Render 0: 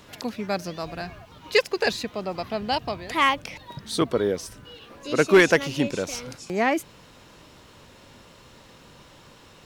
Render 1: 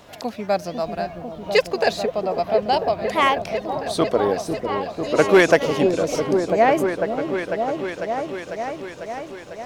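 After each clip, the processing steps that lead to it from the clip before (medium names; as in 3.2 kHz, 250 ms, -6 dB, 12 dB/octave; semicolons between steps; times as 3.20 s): peaking EQ 670 Hz +10.5 dB 0.68 oct; hum notches 60/120 Hz; on a send: delay with an opening low-pass 498 ms, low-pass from 400 Hz, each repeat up 1 oct, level -3 dB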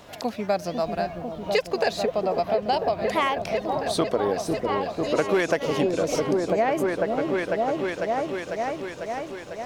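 compression 6:1, threshold -19 dBFS, peak gain reduction 10 dB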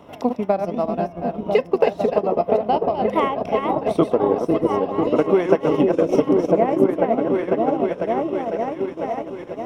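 chunks repeated in reverse 286 ms, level -4 dB; transient shaper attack +4 dB, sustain -8 dB; reverberation RT60 0.25 s, pre-delay 3 ms, DRR 16 dB; trim -8.5 dB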